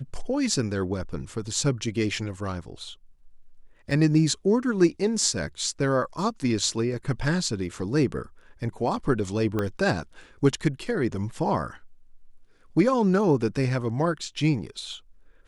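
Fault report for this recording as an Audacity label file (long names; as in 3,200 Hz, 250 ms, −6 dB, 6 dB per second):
3.910000	3.910000	drop-out 3.4 ms
9.590000	9.590000	click −14 dBFS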